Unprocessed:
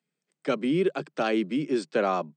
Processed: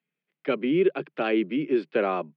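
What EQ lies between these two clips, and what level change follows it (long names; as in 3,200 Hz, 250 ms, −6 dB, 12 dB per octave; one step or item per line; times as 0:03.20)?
dynamic equaliser 380 Hz, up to +7 dB, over −37 dBFS, Q 1.4
high-frequency loss of the air 370 metres
parametric band 2,600 Hz +11 dB 1.4 octaves
−3.0 dB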